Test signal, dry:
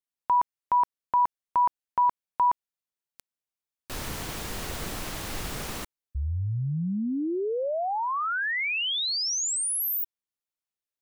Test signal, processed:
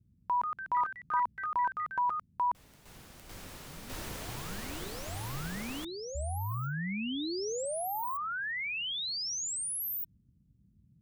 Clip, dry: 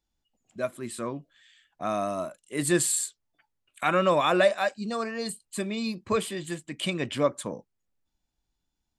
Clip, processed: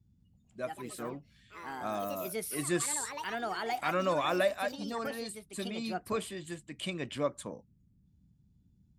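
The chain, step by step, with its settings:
delay with pitch and tempo change per echo 200 ms, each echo +4 semitones, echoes 3, each echo −6 dB
noise in a band 40–200 Hz −58 dBFS
level −7.5 dB

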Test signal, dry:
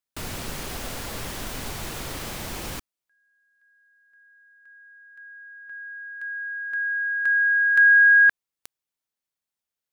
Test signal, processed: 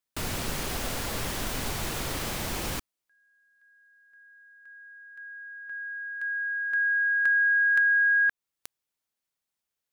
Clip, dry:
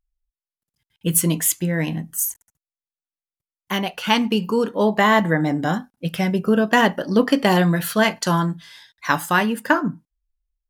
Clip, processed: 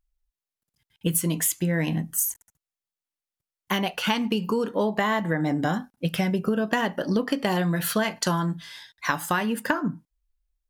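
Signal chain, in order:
downward compressor 10 to 1, threshold −22 dBFS
level +1.5 dB

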